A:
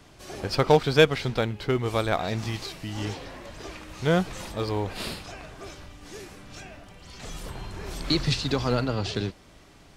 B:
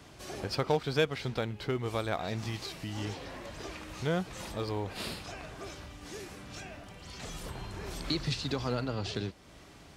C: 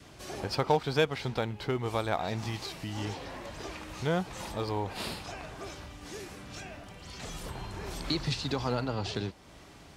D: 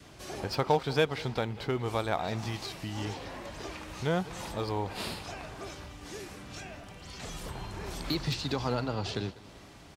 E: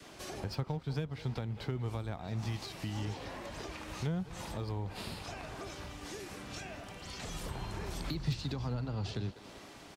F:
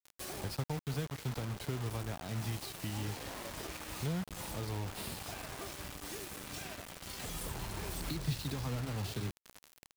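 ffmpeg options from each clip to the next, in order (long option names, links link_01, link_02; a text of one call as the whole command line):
ffmpeg -i in.wav -af "highpass=41,acompressor=threshold=-42dB:ratio=1.5" out.wav
ffmpeg -i in.wav -af "adynamicequalizer=threshold=0.00282:dfrequency=870:dqfactor=2.9:tfrequency=870:tqfactor=2.9:attack=5:release=100:ratio=0.375:range=3:mode=boostabove:tftype=bell,volume=1dB" out.wav
ffmpeg -i in.wav -filter_complex "[0:a]acrossover=split=2900[link_01][link_02];[link_02]volume=31.5dB,asoftclip=hard,volume=-31.5dB[link_03];[link_01][link_03]amix=inputs=2:normalize=0,aecho=1:1:195|390|585|780:0.1|0.056|0.0314|0.0176" out.wav
ffmpeg -i in.wav -filter_complex "[0:a]acrossover=split=200[link_01][link_02];[link_01]aeval=exprs='sgn(val(0))*max(abs(val(0))-0.00133,0)':channel_layout=same[link_03];[link_02]acompressor=threshold=-42dB:ratio=12[link_04];[link_03][link_04]amix=inputs=2:normalize=0,volume=1.5dB" out.wav
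ffmpeg -i in.wav -filter_complex "[0:a]acrossover=split=310|1500[link_01][link_02][link_03];[link_03]aexciter=amount=2.4:drive=7:freq=8600[link_04];[link_01][link_02][link_04]amix=inputs=3:normalize=0,acrusher=bits=6:mix=0:aa=0.000001,volume=-1.5dB" out.wav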